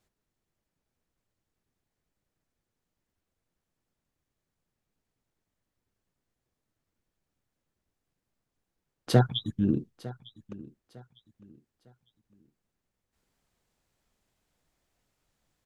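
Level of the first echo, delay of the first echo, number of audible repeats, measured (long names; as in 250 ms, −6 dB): −19.0 dB, 904 ms, 2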